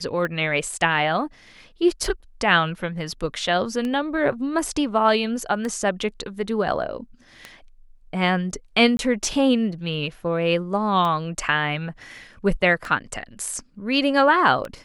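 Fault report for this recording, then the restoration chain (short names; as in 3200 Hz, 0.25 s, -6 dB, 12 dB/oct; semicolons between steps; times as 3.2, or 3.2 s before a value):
tick 33 1/3 rpm -16 dBFS
8.97–8.99 gap 21 ms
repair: de-click; interpolate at 8.97, 21 ms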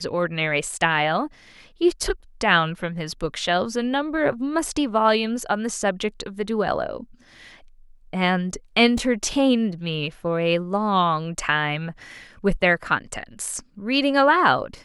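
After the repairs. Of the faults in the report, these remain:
none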